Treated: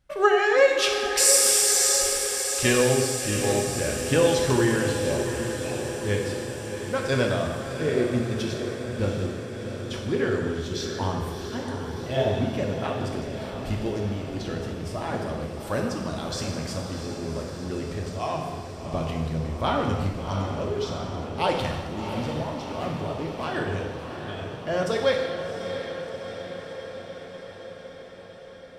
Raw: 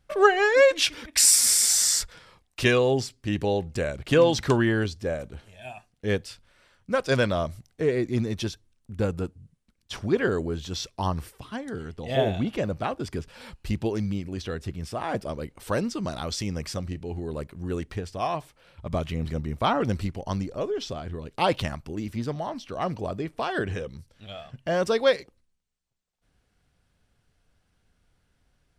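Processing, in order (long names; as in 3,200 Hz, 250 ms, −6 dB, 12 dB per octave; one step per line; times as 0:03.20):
0:22.22–0:23.44: hard clipping −24.5 dBFS, distortion −32 dB
feedback delay with all-pass diffusion 697 ms, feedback 69%, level −8 dB
reverb whose tail is shaped and stops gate 440 ms falling, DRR 0.5 dB
level −3 dB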